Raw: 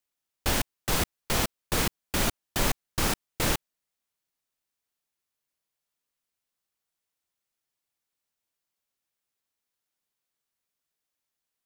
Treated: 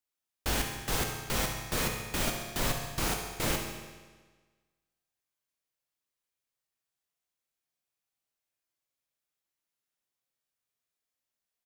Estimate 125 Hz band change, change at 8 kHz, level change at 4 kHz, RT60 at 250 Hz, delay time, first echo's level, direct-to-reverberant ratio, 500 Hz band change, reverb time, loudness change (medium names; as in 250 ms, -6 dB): -3.0 dB, -3.5 dB, -3.5 dB, 1.4 s, 69 ms, -10.5 dB, 1.0 dB, -3.0 dB, 1.4 s, -3.5 dB